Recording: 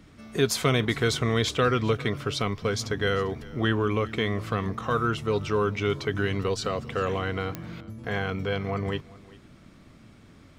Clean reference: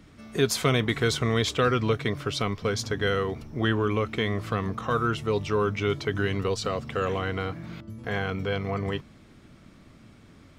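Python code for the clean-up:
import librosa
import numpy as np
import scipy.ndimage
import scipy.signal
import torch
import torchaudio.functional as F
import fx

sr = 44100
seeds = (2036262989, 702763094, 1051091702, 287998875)

y = fx.fix_declick_ar(x, sr, threshold=10.0)
y = fx.fix_echo_inverse(y, sr, delay_ms=397, level_db=-21.5)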